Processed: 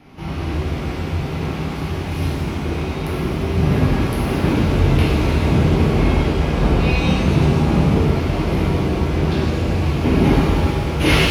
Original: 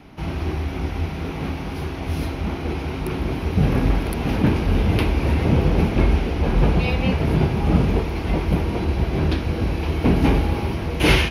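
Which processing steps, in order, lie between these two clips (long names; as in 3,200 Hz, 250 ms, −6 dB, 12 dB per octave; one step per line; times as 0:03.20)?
reverb with rising layers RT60 1.6 s, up +7 semitones, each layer −8 dB, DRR −5 dB
level −3.5 dB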